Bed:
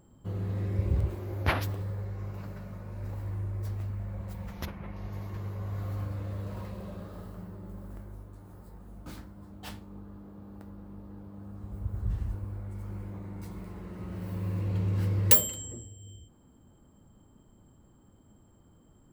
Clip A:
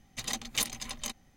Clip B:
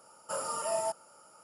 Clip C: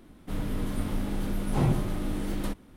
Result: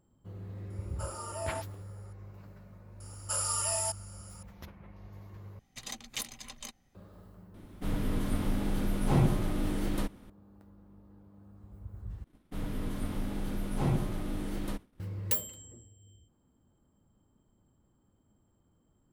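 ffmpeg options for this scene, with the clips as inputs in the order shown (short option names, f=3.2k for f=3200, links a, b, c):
-filter_complex "[2:a]asplit=2[a][b];[3:a]asplit=2[c][d];[0:a]volume=-10.5dB[e];[b]tiltshelf=f=1.4k:g=-10[f];[d]agate=range=-33dB:threshold=-46dB:ratio=3:release=100:detection=peak[g];[e]asplit=3[h][i][j];[h]atrim=end=5.594[k];[1:a]atrim=end=1.36,asetpts=PTS-STARTPTS,volume=-7dB[l];[i]atrim=start=6.946:end=12.244[m];[g]atrim=end=2.76,asetpts=PTS-STARTPTS,volume=-4.5dB[n];[j]atrim=start=14.996[o];[a]atrim=end=1.43,asetpts=PTS-STARTPTS,volume=-6.5dB,afade=t=in:d=0.004:c=hsin,afade=t=out:st=1.426:d=0.004:c=hsin,adelay=700[p];[f]atrim=end=1.43,asetpts=PTS-STARTPTS,volume=-1dB,afade=t=in:d=0.004:c=hsin,afade=t=out:st=1.426:d=0.004:c=hsin,adelay=3000[q];[c]atrim=end=2.76,asetpts=PTS-STARTPTS,volume=-0.5dB,afade=t=in:d=0.004:c=hsin,afade=t=out:st=2.756:d=0.004:c=hsin,adelay=332514S[r];[k][l]acrossfade=d=0.004:c1=hsin:c2=hsin[s];[s][m]acrossfade=d=0.004:c1=hsin:c2=hsin[t];[t][n]acrossfade=d=0.004:c1=hsin:c2=hsin[u];[u][o]acrossfade=d=0.004:c1=hsin:c2=hsin[v];[v][p][q][r]amix=inputs=4:normalize=0"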